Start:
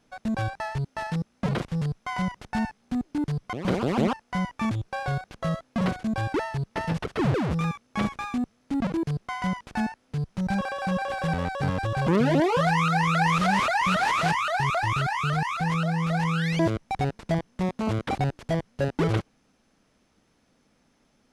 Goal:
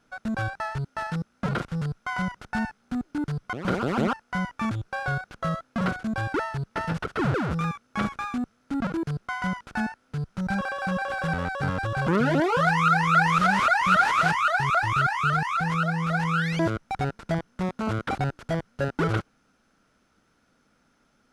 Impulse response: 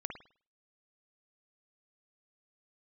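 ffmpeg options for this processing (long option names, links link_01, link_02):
-af "equalizer=frequency=1400:width=4.6:gain=12,volume=-1.5dB"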